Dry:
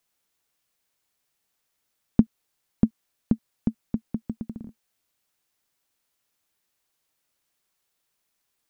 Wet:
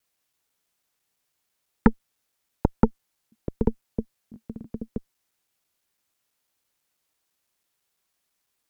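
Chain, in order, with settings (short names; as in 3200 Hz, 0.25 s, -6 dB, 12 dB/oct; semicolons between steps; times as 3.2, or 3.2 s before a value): slices in reverse order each 0.166 s, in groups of 5; added harmonics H 8 -12 dB, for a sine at -3 dBFS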